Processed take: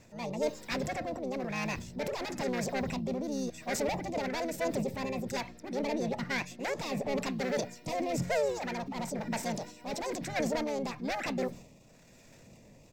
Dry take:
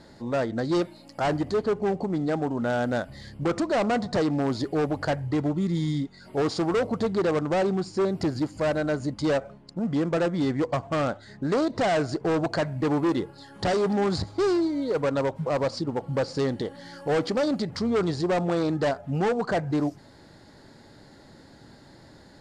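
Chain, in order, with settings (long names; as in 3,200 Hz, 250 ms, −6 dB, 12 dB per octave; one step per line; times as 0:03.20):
flat-topped bell 600 Hz −12.5 dB 1.2 octaves
phaser with its sweep stopped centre 1,200 Hz, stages 8
transient designer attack −3 dB, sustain +8 dB
pitch-shifted copies added −5 semitones −4 dB, +7 semitones −17 dB
rotating-speaker cabinet horn 0.6 Hz
wrong playback speed 45 rpm record played at 78 rpm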